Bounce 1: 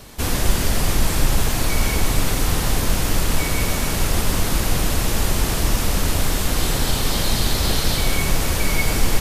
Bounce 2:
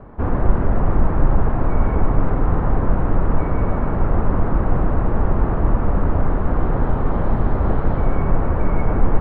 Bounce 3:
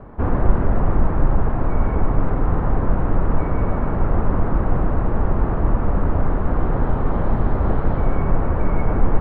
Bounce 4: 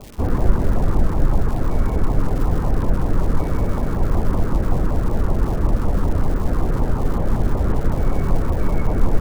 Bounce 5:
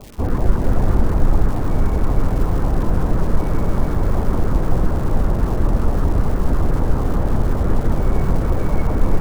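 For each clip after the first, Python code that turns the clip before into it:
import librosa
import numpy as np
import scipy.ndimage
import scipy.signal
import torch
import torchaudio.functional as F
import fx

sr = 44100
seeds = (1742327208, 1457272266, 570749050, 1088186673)

y1 = scipy.signal.sosfilt(scipy.signal.butter(4, 1300.0, 'lowpass', fs=sr, output='sos'), x)
y1 = y1 * librosa.db_to_amplitude(3.0)
y2 = fx.rider(y1, sr, range_db=10, speed_s=2.0)
y2 = y2 * librosa.db_to_amplitude(-1.0)
y3 = fx.dmg_crackle(y2, sr, seeds[0], per_s=350.0, level_db=-30.0)
y3 = fx.filter_lfo_notch(y3, sr, shape='saw_down', hz=5.3, low_hz=560.0, high_hz=1800.0, q=1.7)
y4 = y3 + 10.0 ** (-4.5 / 20.0) * np.pad(y3, (int(448 * sr / 1000.0), 0))[:len(y3)]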